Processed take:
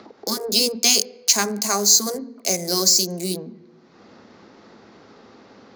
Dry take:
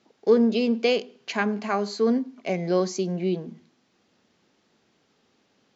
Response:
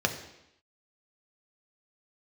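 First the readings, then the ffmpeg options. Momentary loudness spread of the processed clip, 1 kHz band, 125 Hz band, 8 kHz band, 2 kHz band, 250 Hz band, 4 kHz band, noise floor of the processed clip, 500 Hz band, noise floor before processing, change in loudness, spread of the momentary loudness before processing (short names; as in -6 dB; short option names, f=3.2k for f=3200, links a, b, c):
12 LU, +2.0 dB, -2.0 dB, n/a, +1.5 dB, -4.5 dB, +16.0 dB, -51 dBFS, -4.5 dB, -68 dBFS, +6.5 dB, 10 LU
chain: -filter_complex "[0:a]acrossover=split=210|2100[a][b][c];[c]aeval=exprs='sgn(val(0))*max(abs(val(0))-0.00224,0)':c=same[d];[a][b][d]amix=inputs=3:normalize=0,highshelf=f=2k:g=10,asplit=2[e][f];[1:a]atrim=start_sample=2205,lowpass=2.4k[g];[f][g]afir=irnorm=-1:irlink=0,volume=-20dB[h];[e][h]amix=inputs=2:normalize=0,aexciter=amount=15.7:drive=4:freq=4.5k,acompressor=mode=upward:threshold=-30dB:ratio=2.5,afftfilt=real='re*lt(hypot(re,im),0.891)':imag='im*lt(hypot(re,im),0.891)':win_size=1024:overlap=0.75,acrossover=split=170|3000[i][j][k];[i]acompressor=threshold=-28dB:ratio=8[l];[l][j][k]amix=inputs=3:normalize=0,adynamicequalizer=threshold=0.0316:dfrequency=6400:dqfactor=7.8:tfrequency=6400:tqfactor=7.8:attack=5:release=100:ratio=0.375:range=2:mode=boostabove:tftype=bell,volume=-1dB"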